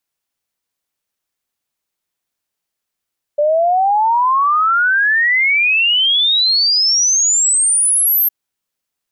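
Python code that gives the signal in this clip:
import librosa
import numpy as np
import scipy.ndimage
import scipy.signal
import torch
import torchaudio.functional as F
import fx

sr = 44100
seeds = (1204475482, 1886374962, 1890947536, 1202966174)

y = fx.ess(sr, length_s=4.91, from_hz=580.0, to_hz=13000.0, level_db=-10.5)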